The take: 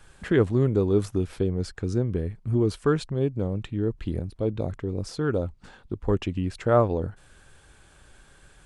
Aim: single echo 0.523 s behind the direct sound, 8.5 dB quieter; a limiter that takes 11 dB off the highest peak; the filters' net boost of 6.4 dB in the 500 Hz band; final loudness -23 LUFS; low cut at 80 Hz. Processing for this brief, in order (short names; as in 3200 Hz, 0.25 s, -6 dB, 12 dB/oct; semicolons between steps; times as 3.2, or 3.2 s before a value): HPF 80 Hz; bell 500 Hz +8 dB; limiter -13.5 dBFS; echo 0.523 s -8.5 dB; gain +2.5 dB